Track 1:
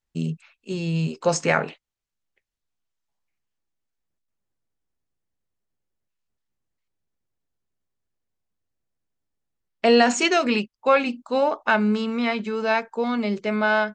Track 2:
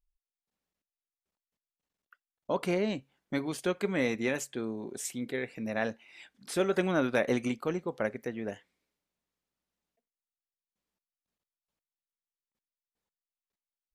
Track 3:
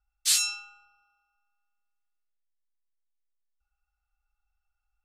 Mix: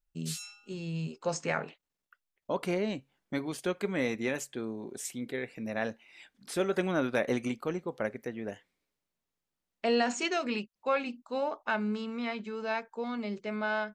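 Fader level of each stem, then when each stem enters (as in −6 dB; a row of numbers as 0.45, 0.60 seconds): −11.0, −1.5, −16.5 decibels; 0.00, 0.00, 0.00 seconds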